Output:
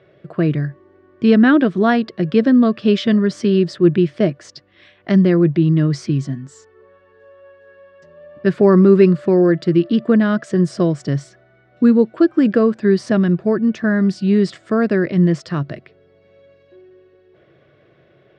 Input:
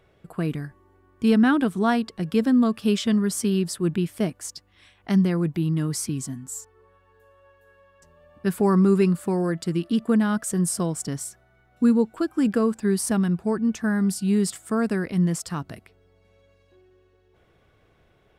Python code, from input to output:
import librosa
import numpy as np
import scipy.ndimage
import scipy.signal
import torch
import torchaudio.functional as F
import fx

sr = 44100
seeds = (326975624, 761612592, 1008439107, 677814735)

y = fx.cabinet(x, sr, low_hz=120.0, low_slope=12, high_hz=4800.0, hz=(140.0, 350.0, 590.0, 850.0, 1800.0), db=(10, 8, 10, -7, 5))
y = y * librosa.db_to_amplitude(5.0)